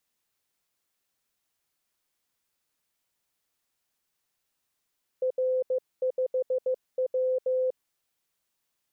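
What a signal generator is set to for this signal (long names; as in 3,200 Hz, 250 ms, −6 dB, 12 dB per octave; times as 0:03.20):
Morse code "R5W" 15 words per minute 513 Hz −23 dBFS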